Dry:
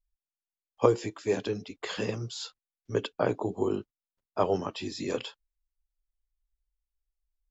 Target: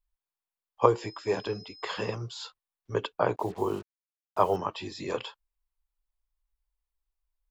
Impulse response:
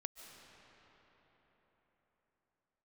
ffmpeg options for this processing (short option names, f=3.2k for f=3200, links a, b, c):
-filter_complex "[0:a]asettb=1/sr,asplit=3[a][b][c];[a]atrim=end=1.014[d];[b]atrim=start=1.01:end=2.15,asetpts=PTS-STARTPTS,afade=t=in:d=0.004:c=qsin,afade=t=out:st=1.136:d=0.004:c=qsin,aeval=exprs='val(0)+0.00562*sin(2*PI*5100*n/s)':c=same[e];[c]atrim=start=2.146[f];[d][e]acrossfade=d=0.004:c1=hsin:c2=qsin[g];[g][f]acrossfade=d=0.004:c1=qsin:c2=hsin,equalizer=f=250:t=o:w=0.67:g=-7,equalizer=f=1k:t=o:w=0.67:g=8,equalizer=f=6.3k:t=o:w=0.67:g=-6,asettb=1/sr,asplit=3[h][i][j];[h]atrim=end=3.364[k];[i]atrim=start=3.36:end=4.56,asetpts=PTS-STARTPTS,afade=t=in:d=0.004:c=qsin,afade=t=out:st=1.196:d=0.004:c=qsin,acrusher=bits=7:mix=0:aa=0.5[l];[j]atrim=start=4.556[m];[k][l]acrossfade=d=0.004:c1=hsin:c2=qsin[n];[n][m]acrossfade=d=0.004:c1=qsin:c2=hsin"